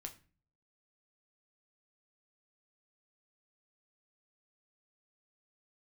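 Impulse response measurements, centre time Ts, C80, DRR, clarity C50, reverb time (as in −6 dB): 9 ms, 19.5 dB, 3.5 dB, 14.5 dB, 0.40 s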